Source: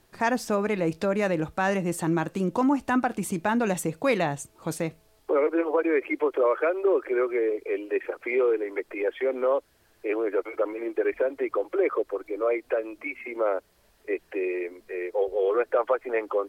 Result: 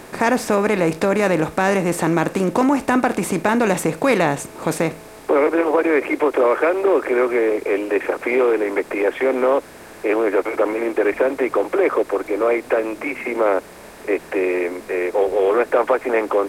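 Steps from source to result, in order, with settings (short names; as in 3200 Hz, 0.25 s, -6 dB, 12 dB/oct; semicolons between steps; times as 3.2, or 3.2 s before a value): per-bin compression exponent 0.6; gain +4 dB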